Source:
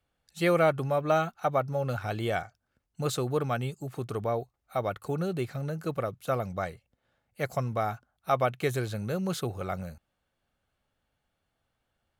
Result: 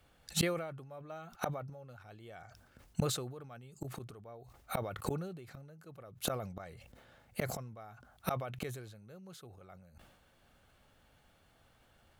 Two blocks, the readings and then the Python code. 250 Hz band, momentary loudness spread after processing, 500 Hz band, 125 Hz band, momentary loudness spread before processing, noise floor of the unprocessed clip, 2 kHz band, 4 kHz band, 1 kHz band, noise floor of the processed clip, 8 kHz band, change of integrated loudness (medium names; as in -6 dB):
-9.0 dB, 19 LU, -13.0 dB, -9.5 dB, 10 LU, -81 dBFS, -10.5 dB, -2.0 dB, -13.5 dB, -68 dBFS, +1.0 dB, -9.5 dB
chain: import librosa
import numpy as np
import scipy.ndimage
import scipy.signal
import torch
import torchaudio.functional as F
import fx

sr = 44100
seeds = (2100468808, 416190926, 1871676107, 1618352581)

y = fx.gate_flip(x, sr, shuts_db=-30.0, range_db=-34)
y = fx.sustainer(y, sr, db_per_s=52.0)
y = F.gain(torch.from_numpy(y), 12.0).numpy()